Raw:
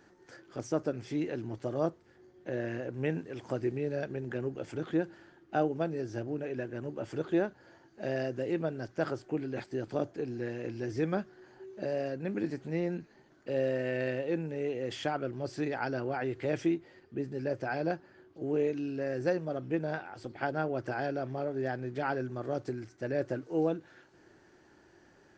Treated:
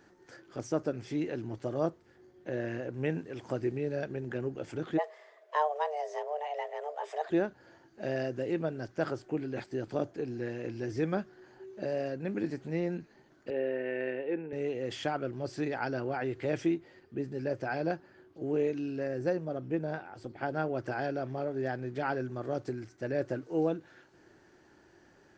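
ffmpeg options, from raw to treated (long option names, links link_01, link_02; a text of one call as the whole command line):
ffmpeg -i in.wav -filter_complex "[0:a]asplit=3[link_01][link_02][link_03];[link_01]afade=type=out:start_time=4.97:duration=0.02[link_04];[link_02]afreqshift=300,afade=type=in:start_time=4.97:duration=0.02,afade=type=out:start_time=7.29:duration=0.02[link_05];[link_03]afade=type=in:start_time=7.29:duration=0.02[link_06];[link_04][link_05][link_06]amix=inputs=3:normalize=0,asettb=1/sr,asplit=3[link_07][link_08][link_09];[link_07]atrim=end=13.504[link_10];[link_08]atrim=start=13.5:end=14.53,asetpts=PTS-STARTPTS,afade=type=in:duration=0.004:curve=qsin,afade=type=out:start_time=1.026:duration=0.004:curve=qsin,highpass=290,equalizer=frequency=420:width_type=q:width=4:gain=5,equalizer=frequency=590:width_type=q:width=4:gain=-7,equalizer=frequency=1200:width_type=q:width=4:gain=-7,lowpass=frequency=2700:width=0.5412,lowpass=frequency=2700:width=1.3066[link_11];[link_09]atrim=start=14.526[link_12];[link_10][link_11]acrossfade=duration=0.004:curve1=hsin:curve2=qsin[link_13];[link_13][link_12]acrossfade=duration=0.004:curve1=qsin:curve2=hsin,asettb=1/sr,asplit=3[link_14][link_15][link_16];[link_14]atrim=end=19.074[link_17];[link_15]atrim=start=19.07:end=20.51,asetpts=PTS-STARTPTS,afade=type=in:duration=0.004:curve=qsin,afade=type=out:start_time=1.436:duration=0.004:curve=qsin,equalizer=frequency=3600:width=0.31:gain=-4.5[link_18];[link_16]atrim=start=20.506[link_19];[link_17][link_18]acrossfade=duration=0.004:curve1=hsin:curve2=qsin[link_20];[link_20][link_19]acrossfade=duration=0.004:curve1=qsin:curve2=hsin" out.wav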